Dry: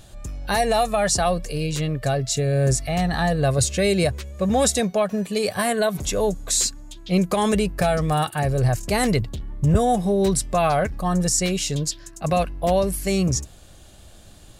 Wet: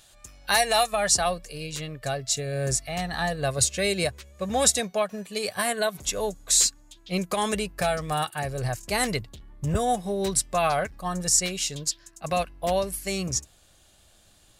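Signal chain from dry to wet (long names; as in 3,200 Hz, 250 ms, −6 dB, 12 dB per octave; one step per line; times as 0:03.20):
tilt shelving filter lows −9 dB, about 650 Hz, from 0:00.91 lows −4.5 dB
expander for the loud parts 1.5 to 1, over −31 dBFS
level −2 dB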